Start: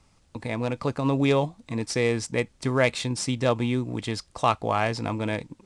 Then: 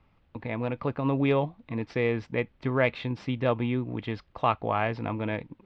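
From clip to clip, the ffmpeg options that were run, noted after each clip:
-af "lowpass=f=3100:w=0.5412,lowpass=f=3100:w=1.3066,volume=0.75"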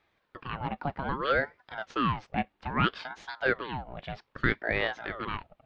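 -af "lowshelf=f=270:t=q:w=1.5:g=-14,aeval=exprs='val(0)*sin(2*PI*750*n/s+750*0.65/0.62*sin(2*PI*0.62*n/s))':c=same"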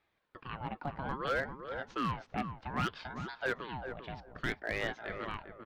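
-filter_complex "[0:a]asoftclip=type=hard:threshold=0.106,asplit=2[s0][s1];[s1]adelay=396,lowpass=f=910:p=1,volume=0.531,asplit=2[s2][s3];[s3]adelay=396,lowpass=f=910:p=1,volume=0.2,asplit=2[s4][s5];[s5]adelay=396,lowpass=f=910:p=1,volume=0.2[s6];[s2][s4][s6]amix=inputs=3:normalize=0[s7];[s0][s7]amix=inputs=2:normalize=0,volume=0.501"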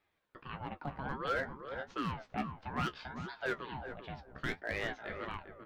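-af "flanger=delay=9.9:depth=5.9:regen=38:speed=1.5:shape=triangular,volume=1.26"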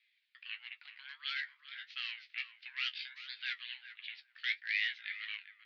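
-af "asuperpass=centerf=3100:order=8:qfactor=1.1,volume=2.99"

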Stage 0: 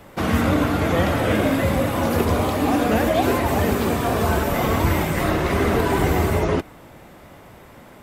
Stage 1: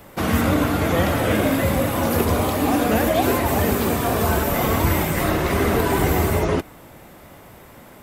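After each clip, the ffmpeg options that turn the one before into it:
-af "highshelf=f=9400:g=10"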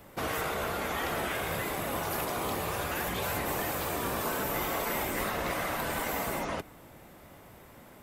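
-af "afftfilt=real='re*lt(hypot(re,im),0.398)':imag='im*lt(hypot(re,im),0.398)':win_size=1024:overlap=0.75,volume=0.398"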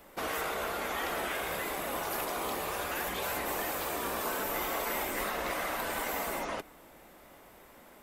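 -af "equalizer=f=110:w=1:g=-14,volume=0.891"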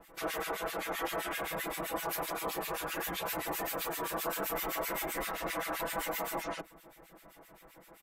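-filter_complex "[0:a]aecho=1:1:6.1:0.94,acrossover=split=1600[s0][s1];[s0]aeval=exprs='val(0)*(1-1/2+1/2*cos(2*PI*7.7*n/s))':c=same[s2];[s1]aeval=exprs='val(0)*(1-1/2-1/2*cos(2*PI*7.7*n/s))':c=same[s3];[s2][s3]amix=inputs=2:normalize=0"

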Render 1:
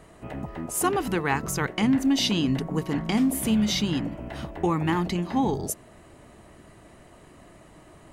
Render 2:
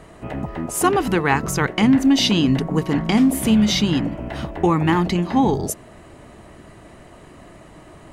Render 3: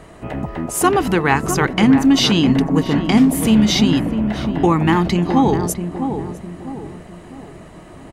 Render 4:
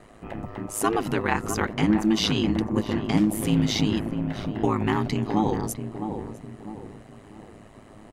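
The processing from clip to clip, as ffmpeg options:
-af "highshelf=f=8300:g=-6.5,volume=2.24"
-filter_complex "[0:a]asplit=2[s0][s1];[s1]adelay=655,lowpass=f=1000:p=1,volume=0.447,asplit=2[s2][s3];[s3]adelay=655,lowpass=f=1000:p=1,volume=0.43,asplit=2[s4][s5];[s5]adelay=655,lowpass=f=1000:p=1,volume=0.43,asplit=2[s6][s7];[s7]adelay=655,lowpass=f=1000:p=1,volume=0.43,asplit=2[s8][s9];[s9]adelay=655,lowpass=f=1000:p=1,volume=0.43[s10];[s0][s2][s4][s6][s8][s10]amix=inputs=6:normalize=0,volume=1.33"
-af "aeval=exprs='val(0)*sin(2*PI*53*n/s)':c=same,volume=0.501"

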